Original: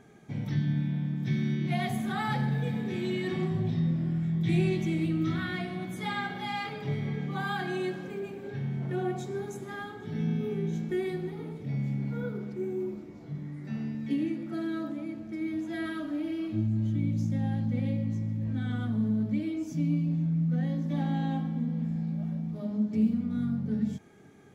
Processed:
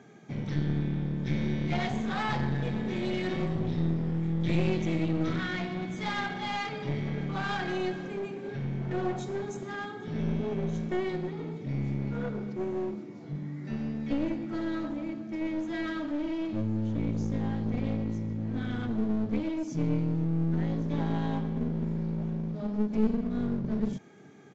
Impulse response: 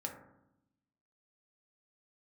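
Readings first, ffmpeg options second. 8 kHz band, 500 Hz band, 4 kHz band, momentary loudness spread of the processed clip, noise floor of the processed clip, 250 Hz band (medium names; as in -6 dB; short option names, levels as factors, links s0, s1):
no reading, +1.5 dB, +1.5 dB, 7 LU, -41 dBFS, -0.5 dB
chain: -af "highpass=f=120:w=0.5412,highpass=f=120:w=1.3066,aeval=exprs='clip(val(0),-1,0.0168)':c=same,aresample=16000,aresample=44100,volume=1.33"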